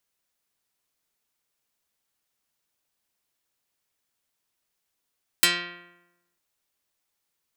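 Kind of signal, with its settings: plucked string F3, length 0.95 s, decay 0.99 s, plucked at 0.41, dark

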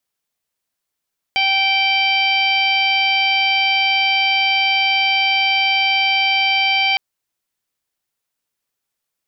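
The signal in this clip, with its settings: steady additive tone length 5.61 s, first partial 779 Hz, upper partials -16/4/1/-13/-4/-17 dB, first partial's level -20.5 dB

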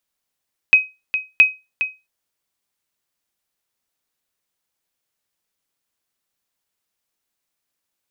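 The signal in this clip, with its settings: sonar ping 2.53 kHz, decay 0.24 s, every 0.67 s, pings 2, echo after 0.41 s, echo -10.5 dB -2.5 dBFS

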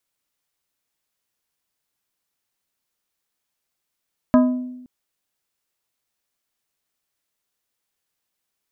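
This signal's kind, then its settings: glass hit plate, length 0.52 s, lowest mode 251 Hz, modes 5, decay 0.98 s, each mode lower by 5.5 dB, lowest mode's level -9 dB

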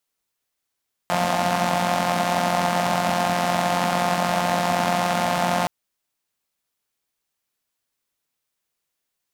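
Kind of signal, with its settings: four-cylinder engine model, steady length 4.57 s, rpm 5300, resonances 220/690 Hz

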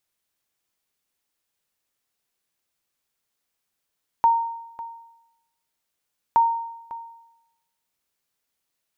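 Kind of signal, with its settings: sonar ping 923 Hz, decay 0.89 s, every 2.12 s, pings 2, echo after 0.55 s, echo -17 dB -11 dBFS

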